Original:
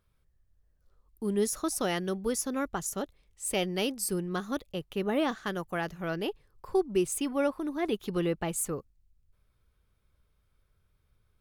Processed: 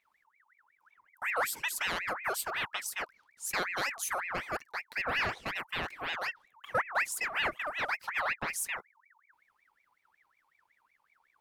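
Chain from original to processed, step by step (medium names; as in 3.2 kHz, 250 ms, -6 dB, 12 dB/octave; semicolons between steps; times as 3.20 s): saturation -17.5 dBFS, distortion -24 dB; ring modulator with a swept carrier 1.6 kHz, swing 45%, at 5.4 Hz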